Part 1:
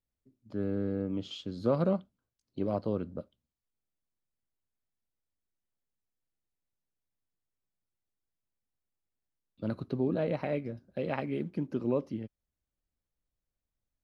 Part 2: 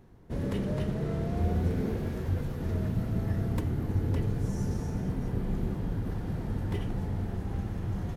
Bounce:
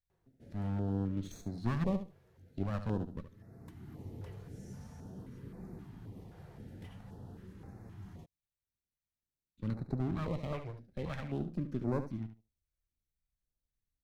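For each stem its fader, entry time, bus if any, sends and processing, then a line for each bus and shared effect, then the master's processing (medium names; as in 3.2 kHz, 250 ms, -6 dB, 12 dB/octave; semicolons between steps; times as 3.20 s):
-4.5 dB, 0.00 s, no send, echo send -10.5 dB, comb filter that takes the minimum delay 0.49 ms
-8.5 dB, 0.10 s, no send, no echo send, high-pass 250 Hz 6 dB/octave; flange 0.54 Hz, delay 5 ms, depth 9.8 ms, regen +72%; auto duck -14 dB, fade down 0.90 s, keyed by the first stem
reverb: none
echo: feedback delay 72 ms, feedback 15%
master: bass shelf 150 Hz +6 dB; step-sequenced notch 3.8 Hz 250–3100 Hz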